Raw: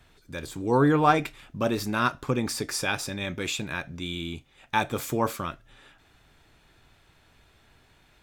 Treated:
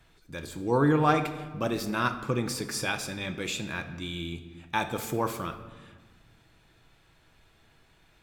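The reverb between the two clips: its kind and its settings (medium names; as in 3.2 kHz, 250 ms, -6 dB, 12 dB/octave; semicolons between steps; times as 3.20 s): simulated room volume 1200 m³, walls mixed, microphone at 0.67 m; trim -3 dB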